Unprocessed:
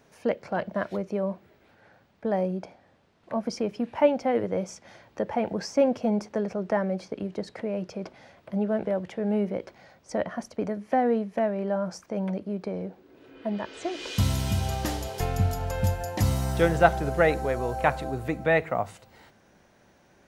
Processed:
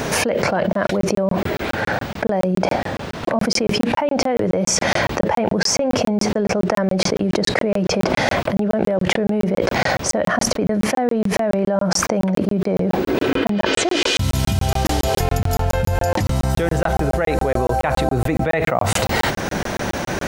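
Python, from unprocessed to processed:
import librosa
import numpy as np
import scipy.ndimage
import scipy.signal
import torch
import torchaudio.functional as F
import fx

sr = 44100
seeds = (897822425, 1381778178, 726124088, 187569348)

y = fx.high_shelf(x, sr, hz=9800.0, db=-10.0, at=(15.98, 16.5))
y = fx.buffer_crackle(y, sr, first_s=0.73, period_s=0.14, block=1024, kind='zero')
y = fx.env_flatten(y, sr, amount_pct=100)
y = y * librosa.db_to_amplitude(-3.5)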